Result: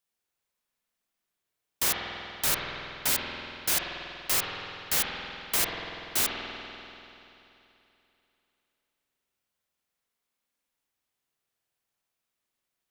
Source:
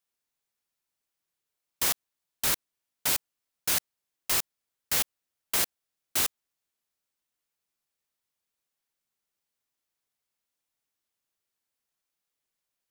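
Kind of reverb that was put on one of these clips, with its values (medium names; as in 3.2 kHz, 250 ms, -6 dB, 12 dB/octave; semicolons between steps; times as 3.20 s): spring tank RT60 3 s, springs 48 ms, chirp 40 ms, DRR -1 dB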